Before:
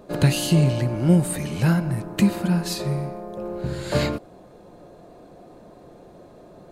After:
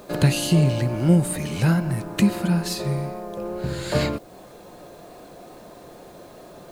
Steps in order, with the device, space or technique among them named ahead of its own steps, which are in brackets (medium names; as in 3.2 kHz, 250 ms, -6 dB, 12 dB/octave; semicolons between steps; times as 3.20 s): noise-reduction cassette on a plain deck (tape noise reduction on one side only encoder only; wow and flutter 27 cents; white noise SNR 36 dB)